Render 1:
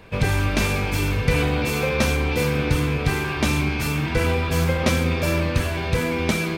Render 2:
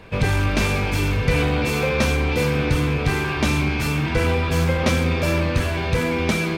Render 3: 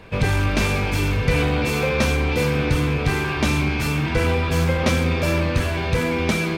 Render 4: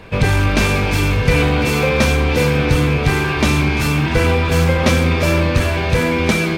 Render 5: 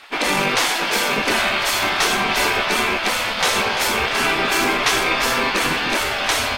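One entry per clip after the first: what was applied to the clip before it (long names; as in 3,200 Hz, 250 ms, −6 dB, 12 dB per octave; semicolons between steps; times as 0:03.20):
high-shelf EQ 10,000 Hz −7 dB; in parallel at −3 dB: soft clipping −20 dBFS, distortion −11 dB; on the sum: level −2 dB
no processing that can be heard
feedback echo with a high-pass in the loop 342 ms, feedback 55%, level −13 dB; level +5 dB
gate on every frequency bin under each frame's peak −15 dB weak; in parallel at −1 dB: brickwall limiter −15 dBFS, peak gain reduction 7 dB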